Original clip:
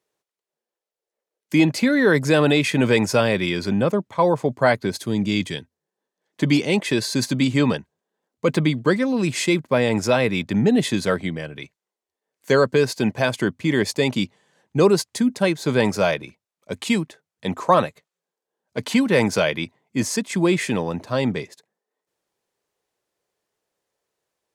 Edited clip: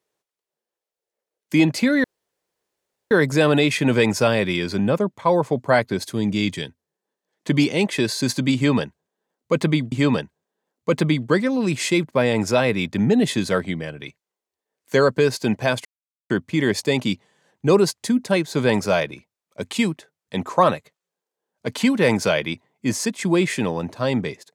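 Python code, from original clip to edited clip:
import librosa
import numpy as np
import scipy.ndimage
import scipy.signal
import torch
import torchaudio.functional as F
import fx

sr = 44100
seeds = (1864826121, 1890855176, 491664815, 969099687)

y = fx.edit(x, sr, fx.insert_room_tone(at_s=2.04, length_s=1.07),
    fx.repeat(start_s=7.48, length_s=1.37, count=2),
    fx.insert_silence(at_s=13.41, length_s=0.45), tone=tone)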